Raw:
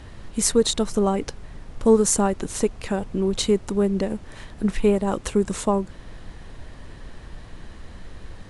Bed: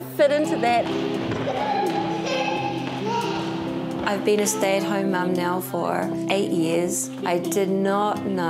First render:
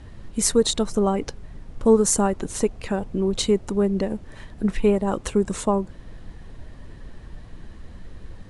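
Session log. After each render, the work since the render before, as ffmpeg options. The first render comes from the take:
-af "afftdn=nr=6:nf=-43"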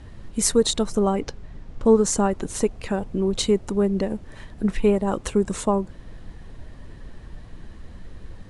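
-filter_complex "[0:a]asettb=1/sr,asplit=3[a][b][c];[a]atrim=end=1.214[d];[b]atrim=start=1.21:end=2.31,asetpts=PTS-STARTPTS,afade=t=in:d=0.004:c=qsin,afade=t=out:st=1.096:d=0.004:c=qsin,lowpass=7.1k[e];[c]atrim=start=2.306[f];[d][e]acrossfade=d=0.004:c1=hsin:c2=qsin[g];[g][f]acrossfade=d=0.004:c1=qsin:c2=hsin"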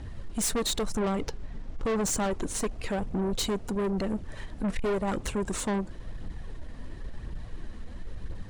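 -af "aphaser=in_gain=1:out_gain=1:delay=4.6:decay=0.33:speed=0.96:type=triangular,aeval=exprs='(tanh(17.8*val(0)+0.2)-tanh(0.2))/17.8':c=same"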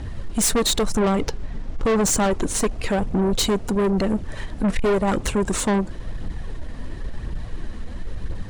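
-af "volume=8.5dB"

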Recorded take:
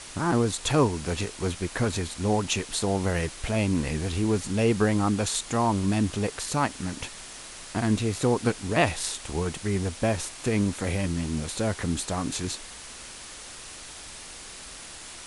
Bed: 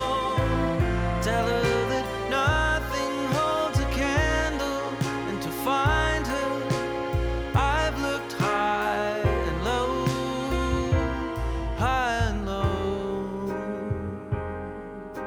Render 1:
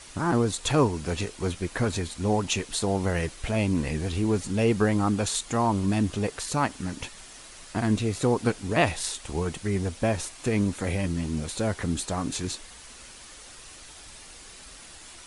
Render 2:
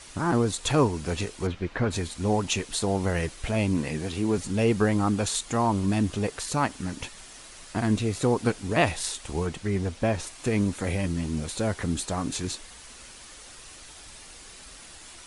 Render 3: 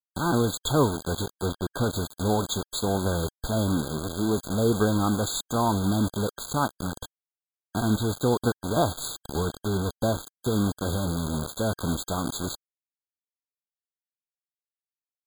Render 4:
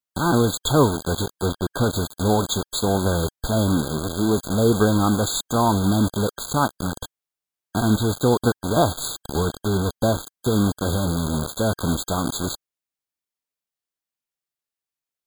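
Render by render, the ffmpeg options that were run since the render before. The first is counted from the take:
-af "afftdn=nr=6:nf=-43"
-filter_complex "[0:a]asplit=3[a][b][c];[a]afade=t=out:st=1.46:d=0.02[d];[b]lowpass=3.2k,afade=t=in:st=1.46:d=0.02,afade=t=out:st=1.9:d=0.02[e];[c]afade=t=in:st=1.9:d=0.02[f];[d][e][f]amix=inputs=3:normalize=0,asettb=1/sr,asplit=3[g][h][i];[g]atrim=end=3.774[j];[h]atrim=start=3.77:end=4.38,asetpts=PTS-STARTPTS,afade=t=in:d=0.004:c=qsin,afade=t=out:st=0.606:d=0.004:c=qsin,highpass=120[k];[i]atrim=start=4.376[l];[j][k]acrossfade=d=0.004:c1=hsin:c2=qsin[m];[m][l]acrossfade=d=0.004:c1=qsin:c2=hsin,asettb=1/sr,asplit=3[n][o][p];[n]atrim=end=9.464[q];[o]atrim=start=9.46:end=10.27,asetpts=PTS-STARTPTS,afade=t=in:d=0.004:c=qsin,afade=t=out:st=0.806:d=0.004:c=qsin,highshelf=f=9.6k:g=-12[r];[p]atrim=start=10.266[s];[q][r]acrossfade=d=0.004:c1=hsin:c2=qsin[t];[t][s]acrossfade=d=0.004:c1=qsin:c2=hsin"
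-af "acrusher=bits=4:mix=0:aa=0.000001,afftfilt=real='re*eq(mod(floor(b*sr/1024/1600),2),0)':imag='im*eq(mod(floor(b*sr/1024/1600),2),0)':win_size=1024:overlap=0.75"
-af "volume=5dB"

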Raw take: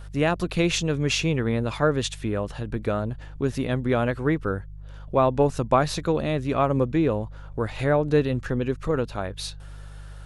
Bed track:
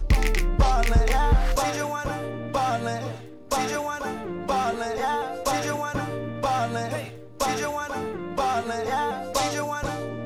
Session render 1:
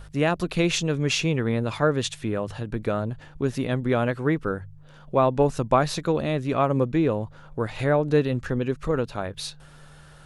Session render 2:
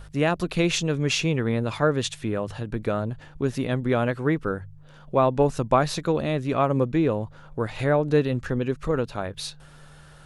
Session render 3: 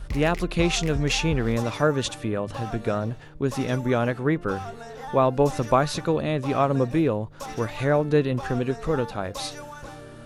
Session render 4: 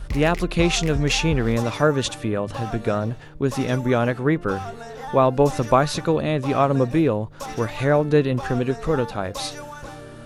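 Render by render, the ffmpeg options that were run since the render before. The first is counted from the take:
-af "bandreject=f=50:t=h:w=4,bandreject=f=100:t=h:w=4"
-af anull
-filter_complex "[1:a]volume=-11.5dB[a];[0:a][a]amix=inputs=2:normalize=0"
-af "volume=3dB"

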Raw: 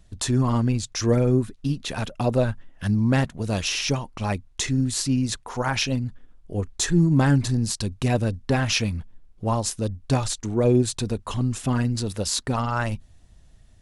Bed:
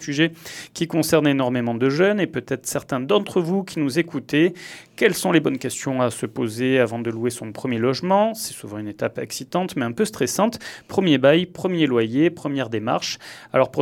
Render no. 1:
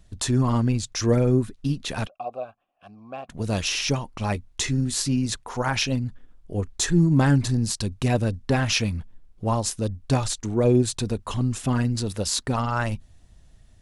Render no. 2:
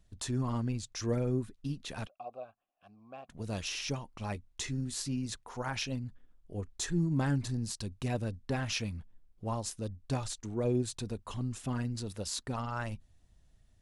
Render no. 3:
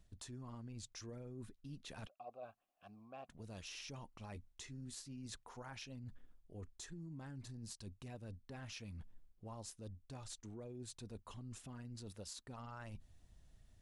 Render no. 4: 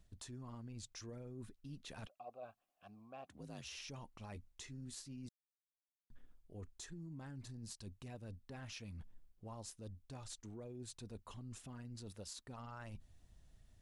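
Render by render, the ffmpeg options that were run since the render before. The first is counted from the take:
-filter_complex "[0:a]asettb=1/sr,asplit=3[a][b][c];[a]atrim=end=2.074[d];[b]atrim=start=2.07:end=3.29,asetpts=PTS-STARTPTS,afade=t=in:d=0.004:c=qsin,afade=t=out:st=1.216:d=0.004:c=qsin,asplit=3[e][f][g];[e]bandpass=f=730:t=q:w=8,volume=0dB[h];[f]bandpass=f=1.09k:t=q:w=8,volume=-6dB[i];[g]bandpass=f=2.44k:t=q:w=8,volume=-9dB[j];[h][i][j]amix=inputs=3:normalize=0[k];[c]atrim=start=3.286[l];[d][k]acrossfade=d=0.004:c1=hsin:c2=qsin[m];[m][l]acrossfade=d=0.004:c1=qsin:c2=hsin,asettb=1/sr,asplit=3[n][o][p];[n]atrim=end=4.334[q];[o]atrim=start=4.33:end=5.26,asetpts=PTS-STARTPTS,afade=t=in:d=0.004:c=qsin,afade=t=out:st=0.926:d=0.004:c=qsin,asplit=2[r][s];[s]adelay=13,volume=-8.5dB[t];[r][t]amix=inputs=2:normalize=0,atrim=end_sample=41013[u];[p]atrim=start=5.256[v];[q][u]acrossfade=d=0.004:c1=hsin:c2=qsin[w];[w][v]acrossfade=d=0.004:c1=qsin:c2=hsin"
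-af "volume=-11.5dB"
-af "alimiter=level_in=6.5dB:limit=-24dB:level=0:latency=1:release=221,volume=-6.5dB,areverse,acompressor=threshold=-48dB:ratio=5,areverse"
-filter_complex "[0:a]asettb=1/sr,asplit=3[a][b][c];[a]atrim=end=3.264[d];[b]atrim=start=3.26:end=3.77,asetpts=PTS-STARTPTS,afade=t=in:d=0.004:c=qsin,afade=t=out:st=0.506:d=0.004:c=qsin,afreqshift=50[e];[c]atrim=start=3.766[f];[d][e]acrossfade=d=0.004:c1=hsin:c2=qsin[g];[g][f]acrossfade=d=0.004:c1=qsin:c2=hsin,asplit=3[h][i][j];[h]atrim=end=5.29,asetpts=PTS-STARTPTS,afade=t=out:st=5.286:d=0.004:c=hsin[k];[i]atrim=start=5.29:end=6.1,asetpts=PTS-STARTPTS,volume=0[l];[j]atrim=start=6.1,asetpts=PTS-STARTPTS,afade=t=in:d=0.004:c=hsin[m];[k][l][m]concat=n=3:v=0:a=1"

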